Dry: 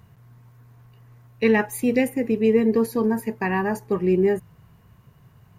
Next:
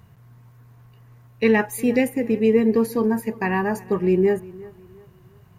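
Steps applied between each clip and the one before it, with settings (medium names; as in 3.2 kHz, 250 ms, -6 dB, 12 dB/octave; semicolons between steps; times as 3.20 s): filtered feedback delay 356 ms, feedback 35%, low-pass 3.5 kHz, level -21 dB; trim +1 dB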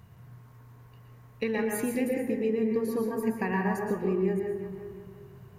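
compression 5:1, threshold -26 dBFS, peak gain reduction 12.5 dB; reverberation RT60 0.80 s, pre-delay 110 ms, DRR 1 dB; trim -2.5 dB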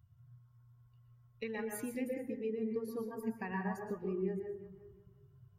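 expander on every frequency bin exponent 1.5; trim -7.5 dB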